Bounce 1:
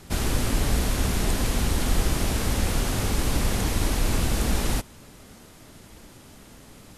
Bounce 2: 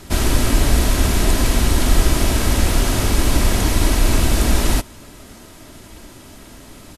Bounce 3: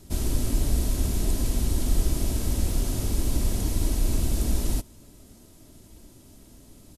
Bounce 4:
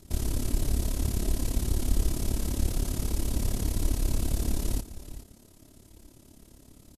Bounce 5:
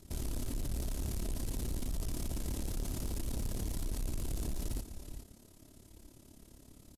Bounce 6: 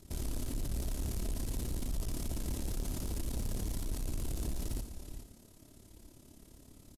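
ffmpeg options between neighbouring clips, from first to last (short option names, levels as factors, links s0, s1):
-af "aecho=1:1:3.1:0.32,volume=2.24"
-af "equalizer=f=1600:t=o:w=2.7:g=-13,volume=0.398"
-af "aecho=1:1:422:0.2,tremolo=f=35:d=0.75"
-af "asoftclip=type=tanh:threshold=0.0422,volume=0.668"
-af "aecho=1:1:71:0.251"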